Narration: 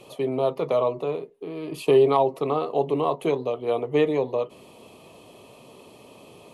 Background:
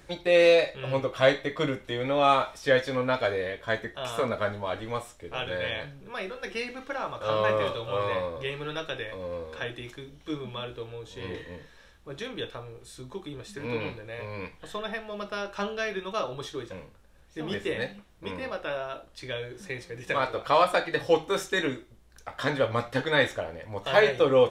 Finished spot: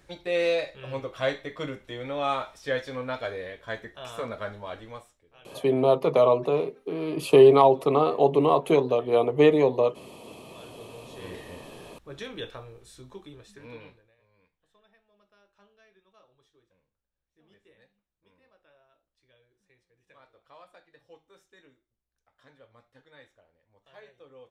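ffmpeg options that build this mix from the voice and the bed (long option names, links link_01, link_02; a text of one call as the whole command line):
ffmpeg -i stem1.wav -i stem2.wav -filter_complex "[0:a]adelay=5450,volume=3dB[link_01];[1:a]volume=15dB,afade=type=out:start_time=4.73:duration=0.52:silence=0.141254,afade=type=in:start_time=10.42:duration=1.24:silence=0.0891251,afade=type=out:start_time=12.59:duration=1.56:silence=0.0375837[link_02];[link_01][link_02]amix=inputs=2:normalize=0" out.wav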